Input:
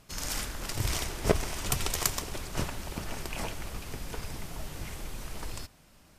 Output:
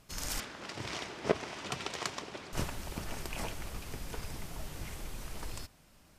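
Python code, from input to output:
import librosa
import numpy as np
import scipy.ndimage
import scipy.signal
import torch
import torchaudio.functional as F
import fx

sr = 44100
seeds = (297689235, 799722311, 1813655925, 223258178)

y = fx.bandpass_edges(x, sr, low_hz=190.0, high_hz=4300.0, at=(0.4, 2.53))
y = y * librosa.db_to_amplitude(-3.0)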